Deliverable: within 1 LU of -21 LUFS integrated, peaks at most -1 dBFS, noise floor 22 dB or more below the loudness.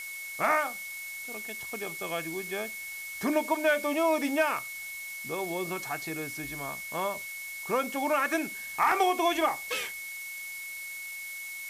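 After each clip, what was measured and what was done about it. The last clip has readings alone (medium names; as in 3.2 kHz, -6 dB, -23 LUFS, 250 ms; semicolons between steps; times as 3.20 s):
steady tone 2.2 kHz; tone level -38 dBFS; noise floor -40 dBFS; noise floor target -53 dBFS; loudness -30.5 LUFS; peak level -13.5 dBFS; loudness target -21.0 LUFS
-> band-stop 2.2 kHz, Q 30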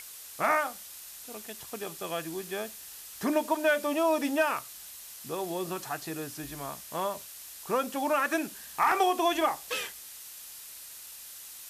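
steady tone not found; noise floor -46 dBFS; noise floor target -53 dBFS
-> noise reduction 7 dB, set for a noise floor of -46 dBFS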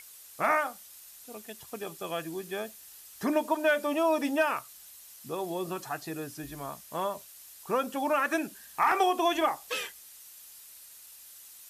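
noise floor -51 dBFS; noise floor target -53 dBFS
-> noise reduction 6 dB, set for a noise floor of -51 dBFS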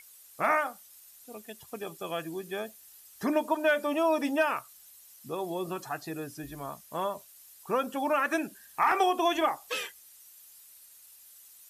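noise floor -55 dBFS; loudness -30.5 LUFS; peak level -14.0 dBFS; loudness target -21.0 LUFS
-> trim +9.5 dB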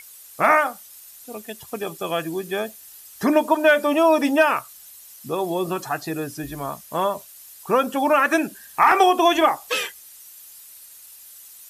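loudness -21.0 LUFS; peak level -4.5 dBFS; noise floor -45 dBFS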